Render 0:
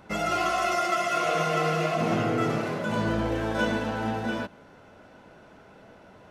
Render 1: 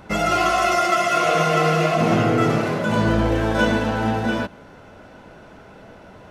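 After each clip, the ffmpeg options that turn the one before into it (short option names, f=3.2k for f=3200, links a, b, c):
-af "lowshelf=f=76:g=7,volume=7dB"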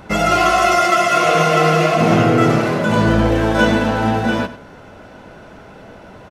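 -af "aecho=1:1:97:0.188,volume=4.5dB"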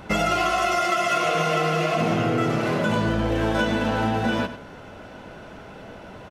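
-af "equalizer=f=3k:t=o:w=0.6:g=3,acompressor=threshold=-17dB:ratio=6,volume=-2dB"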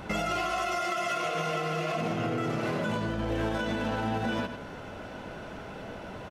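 -af "alimiter=limit=-21.5dB:level=0:latency=1:release=195"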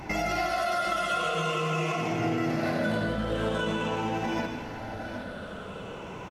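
-filter_complex "[0:a]afftfilt=real='re*pow(10,9/40*sin(2*PI*(0.73*log(max(b,1)*sr/1024/100)/log(2)-(-0.46)*(pts-256)/sr)))':imag='im*pow(10,9/40*sin(2*PI*(0.73*log(max(b,1)*sr/1024/100)/log(2)-(-0.46)*(pts-256)/sr)))':win_size=1024:overlap=0.75,asplit=2[a][b];[b]aecho=0:1:158|769:0.355|0.282[c];[a][c]amix=inputs=2:normalize=0"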